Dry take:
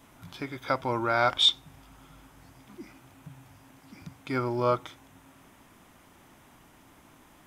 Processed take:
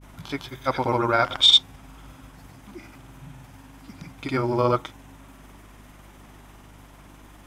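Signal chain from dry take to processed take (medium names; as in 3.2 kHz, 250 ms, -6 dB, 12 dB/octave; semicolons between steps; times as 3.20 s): granulator, pitch spread up and down by 0 st; hum 50 Hz, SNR 23 dB; trim +7 dB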